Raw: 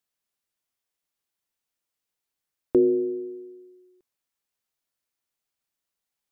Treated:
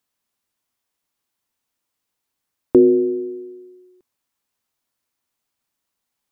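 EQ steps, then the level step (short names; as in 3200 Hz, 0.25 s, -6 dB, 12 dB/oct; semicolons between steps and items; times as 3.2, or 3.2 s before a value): fifteen-band EQ 100 Hz +4 dB, 250 Hz +5 dB, 1000 Hz +4 dB; +5.5 dB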